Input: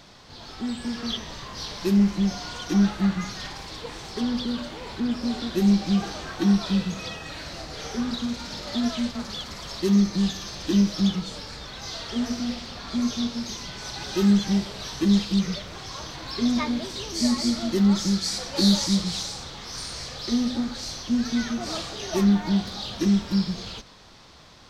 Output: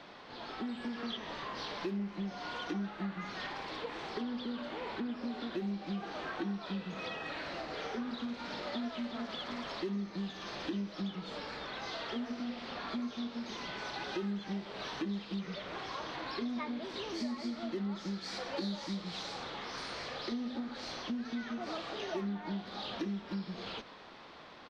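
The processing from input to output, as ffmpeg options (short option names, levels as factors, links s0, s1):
-filter_complex "[0:a]asplit=2[s0][s1];[s1]afade=t=in:st=8.38:d=0.01,afade=t=out:st=8.98:d=0.01,aecho=0:1:370|740|1110|1480|1850:0.530884|0.212354|0.0849415|0.0339766|0.0135906[s2];[s0][s2]amix=inputs=2:normalize=0,acrossover=split=210 3500:gain=0.141 1 0.0708[s3][s4][s5];[s3][s4][s5]amix=inputs=3:normalize=0,acompressor=threshold=0.0126:ratio=4,volume=1.12"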